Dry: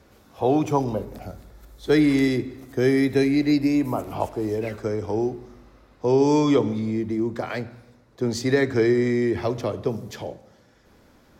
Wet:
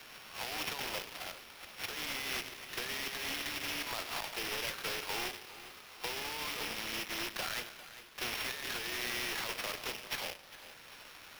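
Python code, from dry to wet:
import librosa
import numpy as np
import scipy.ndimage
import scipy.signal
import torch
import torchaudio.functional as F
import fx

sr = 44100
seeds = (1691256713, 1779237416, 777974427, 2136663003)

y = np.r_[np.sort(x[:len(x) // 8 * 8].reshape(-1, 8), axis=1).ravel(), x[len(x) // 8 * 8:]]
y = scipy.signal.sosfilt(scipy.signal.butter(2, 1500.0, 'highpass', fs=sr, output='sos'), y)
y = fx.over_compress(y, sr, threshold_db=-37.0, ratio=-1.0)
y = fx.sample_hold(y, sr, seeds[0], rate_hz=8100.0, jitter_pct=20)
y = np.clip(y, -10.0 ** (-29.5 / 20.0), 10.0 ** (-29.5 / 20.0))
y = fx.echo_feedback(y, sr, ms=401, feedback_pct=32, wet_db=-19.0)
y = fx.band_squash(y, sr, depth_pct=40)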